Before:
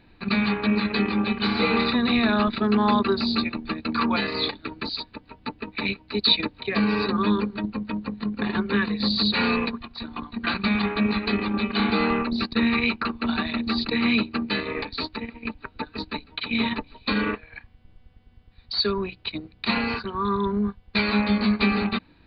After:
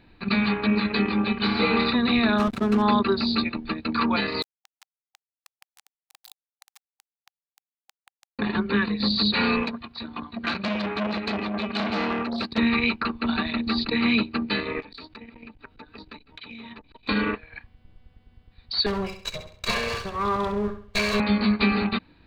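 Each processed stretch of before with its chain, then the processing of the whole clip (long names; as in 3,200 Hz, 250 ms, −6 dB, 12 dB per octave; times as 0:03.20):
0:02.38–0:02.82: high-shelf EQ 3,200 Hz −4.5 dB + slack as between gear wheels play −27 dBFS
0:04.42–0:08.39: downward compressor 5 to 1, threshold −39 dBFS + centre clipping without the shift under −30.5 dBFS + linear-phase brick-wall high-pass 780 Hz
0:09.63–0:12.58: high-pass filter 70 Hz + saturating transformer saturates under 1,400 Hz
0:14.80–0:17.09: notch filter 4,200 Hz, Q 18 + downward compressor 10 to 1, threshold −37 dBFS + saturating transformer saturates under 520 Hz
0:18.86–0:21.20: lower of the sound and its delayed copy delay 1.8 ms + notch filter 310 Hz, Q 5.8 + repeating echo 67 ms, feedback 37%, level −9 dB
whole clip: no processing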